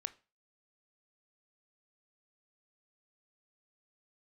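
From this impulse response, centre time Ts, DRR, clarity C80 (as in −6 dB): 3 ms, 13.5 dB, 25.0 dB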